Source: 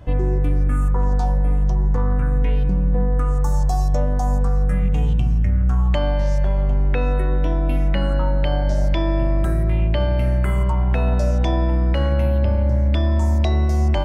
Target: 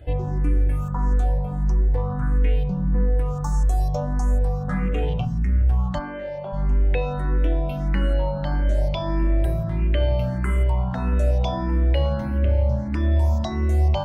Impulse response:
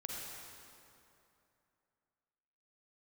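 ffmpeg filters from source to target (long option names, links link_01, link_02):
-filter_complex "[0:a]asettb=1/sr,asplit=3[link_01][link_02][link_03];[link_01]atrim=end=4.684[link_04];[link_02]atrim=start=4.68:end=5.25,asetpts=PTS-STARTPTS,afade=type=in:duration=0.004:curve=qsin,afade=type=out:start_time=0.566:duration=0.004:curve=qsin,asplit=2[link_05][link_06];[link_06]highpass=frequency=720:poles=1,volume=20dB,asoftclip=type=tanh:threshold=-10dB[link_07];[link_05][link_07]amix=inputs=2:normalize=0,lowpass=frequency=1100:poles=1,volume=-6dB[link_08];[link_03]atrim=start=5.246[link_09];[link_04][link_08]acrossfade=duration=0.004:curve1=hsin:curve2=qsin[link_10];[link_10][link_09]acrossfade=duration=0.004:curve1=qsin:curve2=hsin,asplit=3[link_11][link_12][link_13];[link_11]afade=type=out:start_time=5.98:duration=0.02[link_14];[link_12]highpass=250,lowpass=2600,afade=type=in:start_time=5.98:duration=0.02,afade=type=out:start_time=6.52:duration=0.02[link_15];[link_13]afade=type=in:start_time=6.52:duration=0.02[link_16];[link_14][link_15][link_16]amix=inputs=3:normalize=0,asplit=2[link_17][link_18];[link_18]afreqshift=1.6[link_19];[link_17][link_19]amix=inputs=2:normalize=1"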